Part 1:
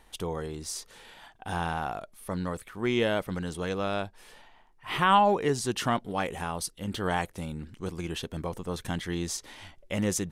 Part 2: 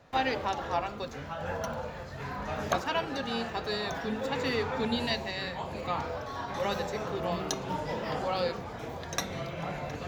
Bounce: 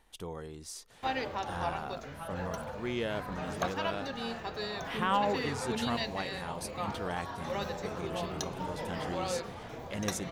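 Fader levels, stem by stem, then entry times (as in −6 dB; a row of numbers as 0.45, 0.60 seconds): −8.0, −4.5 decibels; 0.00, 0.90 seconds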